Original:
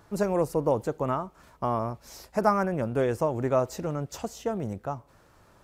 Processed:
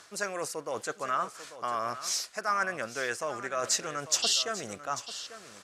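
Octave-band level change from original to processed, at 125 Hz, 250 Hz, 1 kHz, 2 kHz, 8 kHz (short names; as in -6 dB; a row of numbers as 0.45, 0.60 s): -18.0, -14.0, -2.5, +6.5, +15.0 dB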